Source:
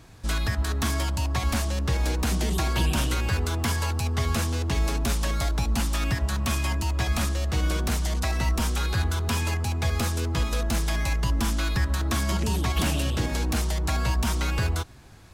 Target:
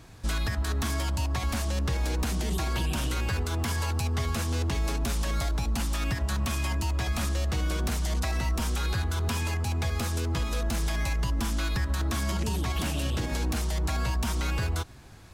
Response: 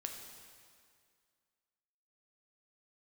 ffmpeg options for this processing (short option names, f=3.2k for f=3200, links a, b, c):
-af "alimiter=limit=-20.5dB:level=0:latency=1:release=102"